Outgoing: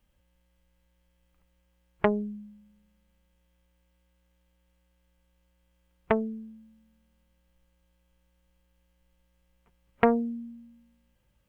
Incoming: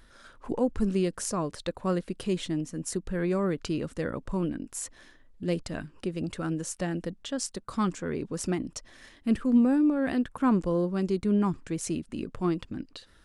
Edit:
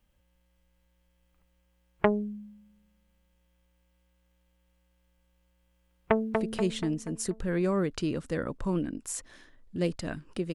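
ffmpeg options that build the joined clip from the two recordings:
-filter_complex "[0:a]apad=whole_dur=10.54,atrim=end=10.54,atrim=end=6.342[s0];[1:a]atrim=start=2.008:end=6.21[s1];[s0][s1]acrossfade=d=0.004:c1=hsin:c2=hsin,asplit=2[s2][s3];[s3]afade=t=in:st=5.88:d=0.01,afade=t=out:st=6.34:d=0.01,aecho=0:1:240|480|720|960|1200|1440:0.630957|0.315479|0.157739|0.0788697|0.0394348|0.0197174[s4];[s2][s4]amix=inputs=2:normalize=0"

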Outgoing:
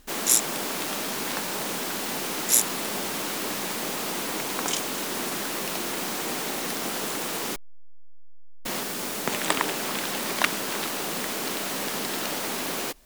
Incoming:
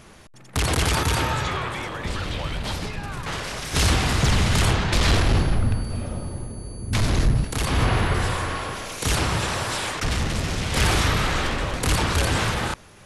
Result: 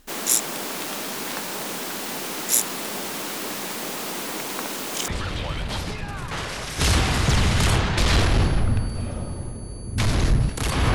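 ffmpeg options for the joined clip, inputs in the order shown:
-filter_complex "[0:a]apad=whole_dur=10.94,atrim=end=10.94,asplit=2[s0][s1];[s0]atrim=end=4.662[s2];[s1]atrim=start=4.658:end=5.082,asetpts=PTS-STARTPTS,areverse[s3];[1:a]atrim=start=2.028:end=7.89[s4];[s2][s3]acrossfade=d=0.004:c1=hsin:c2=hsin[s5];[s5][s4]acrossfade=d=0.004:c1=hsin:c2=hsin"

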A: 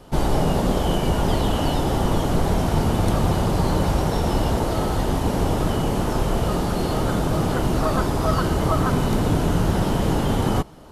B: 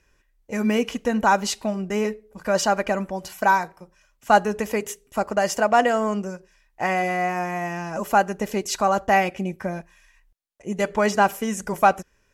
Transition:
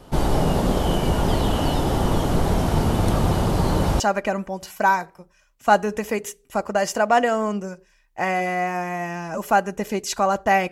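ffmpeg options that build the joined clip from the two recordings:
-filter_complex "[0:a]apad=whole_dur=10.71,atrim=end=10.71,atrim=end=4.002[s0];[1:a]atrim=start=2.618:end=9.33[s1];[s0][s1]acrossfade=d=0.004:c1=hsin:c2=hsin"

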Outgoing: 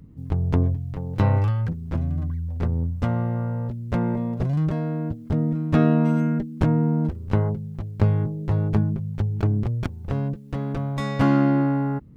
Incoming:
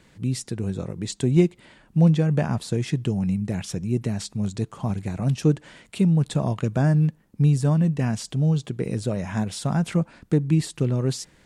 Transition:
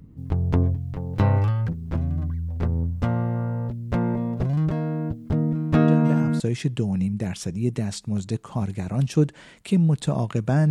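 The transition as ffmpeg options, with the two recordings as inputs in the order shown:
-filter_complex "[1:a]asplit=2[s0][s1];[0:a]apad=whole_dur=10.7,atrim=end=10.7,atrim=end=6.402[s2];[s1]atrim=start=2.678:end=6.98[s3];[s0]atrim=start=2.16:end=2.68,asetpts=PTS-STARTPTS,volume=0.376,afade=t=in:d=0.004:c=hsin,afade=t=out:st=0.516:d=0.004:c=hsin,adelay=5880[s4];[s2][s3]acrossfade=d=0.004:c1=hsin:c2=hsin[s5];[s5][s4]amix=inputs=2:normalize=0"

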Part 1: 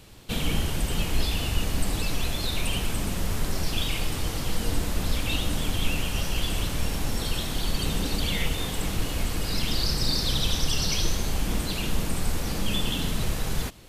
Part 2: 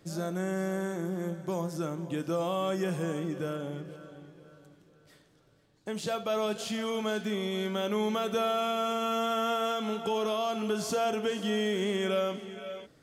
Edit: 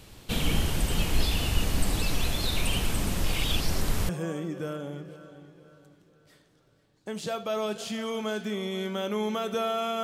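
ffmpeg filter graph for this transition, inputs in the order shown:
-filter_complex "[0:a]apad=whole_dur=10.03,atrim=end=10.03,asplit=2[s0][s1];[s0]atrim=end=3.242[s2];[s1]atrim=start=3.238:end=4.092,asetpts=PTS-STARTPTS,areverse[s3];[1:a]atrim=start=2.888:end=8.83[s4];[s2][s3]acrossfade=d=0.004:c1=hsin:c2=hsin[s5];[s5][s4]acrossfade=d=0.004:c1=hsin:c2=hsin"

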